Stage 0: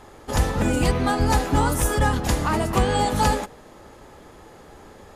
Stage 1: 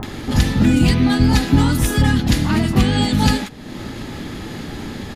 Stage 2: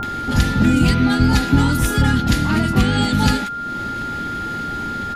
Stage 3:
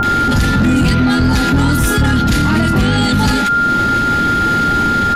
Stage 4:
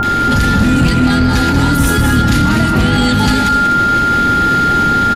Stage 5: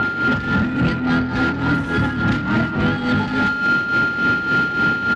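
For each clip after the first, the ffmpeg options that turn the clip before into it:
ffmpeg -i in.wav -filter_complex "[0:a]equalizer=frequency=125:width_type=o:width=1:gain=6,equalizer=frequency=250:width_type=o:width=1:gain=9,equalizer=frequency=500:width_type=o:width=1:gain=-8,equalizer=frequency=1000:width_type=o:width=1:gain=-3,equalizer=frequency=2000:width_type=o:width=1:gain=3,equalizer=frequency=4000:width_type=o:width=1:gain=7,equalizer=frequency=8000:width_type=o:width=1:gain=-4,acompressor=mode=upward:threshold=-19dB:ratio=2.5,acrossover=split=1100[link_01][link_02];[link_02]adelay=30[link_03];[link_01][link_03]amix=inputs=2:normalize=0,volume=2.5dB" out.wav
ffmpeg -i in.wav -af "aeval=exprs='val(0)+0.0708*sin(2*PI*1400*n/s)':channel_layout=same,volume=-1dB" out.wav
ffmpeg -i in.wav -filter_complex "[0:a]asplit=2[link_01][link_02];[link_02]acontrast=84,volume=-3dB[link_03];[link_01][link_03]amix=inputs=2:normalize=0,asoftclip=type=tanh:threshold=0dB,alimiter=level_in=11.5dB:limit=-1dB:release=50:level=0:latency=1,volume=-5.5dB" out.wav
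ffmpeg -i in.wav -af "aecho=1:1:189.5|250.7:0.447|0.316" out.wav
ffmpeg -i in.wav -af "highpass=110,lowpass=2600,asoftclip=type=tanh:threshold=-9.5dB,tremolo=f=3.5:d=0.62,volume=-1dB" out.wav

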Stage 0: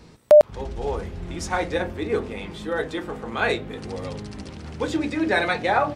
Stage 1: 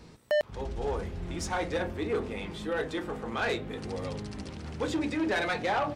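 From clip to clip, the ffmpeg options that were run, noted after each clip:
ffmpeg -i in.wav -filter_complex "[0:a]asplit=2[link_01][link_02];[link_02]alimiter=limit=-13dB:level=0:latency=1:release=290,volume=-2dB[link_03];[link_01][link_03]amix=inputs=2:normalize=0,asoftclip=type=tanh:threshold=-15dB,volume=-8dB" out.wav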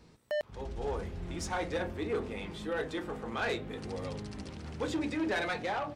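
ffmpeg -i in.wav -af "dynaudnorm=framelen=170:gausssize=7:maxgain=4.5dB,volume=-7.5dB" out.wav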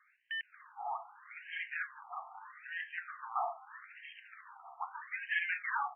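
ffmpeg -i in.wav -af "afftfilt=real='re*between(b*sr/1024,920*pow(2300/920,0.5+0.5*sin(2*PI*0.79*pts/sr))/1.41,920*pow(2300/920,0.5+0.5*sin(2*PI*0.79*pts/sr))*1.41)':imag='im*between(b*sr/1024,920*pow(2300/920,0.5+0.5*sin(2*PI*0.79*pts/sr))/1.41,920*pow(2300/920,0.5+0.5*sin(2*PI*0.79*pts/sr))*1.41)':win_size=1024:overlap=0.75,volume=4.5dB" out.wav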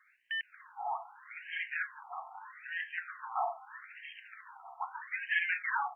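ffmpeg -i in.wav -af "bandreject=frequency=1200:width=9.6,volume=3dB" out.wav

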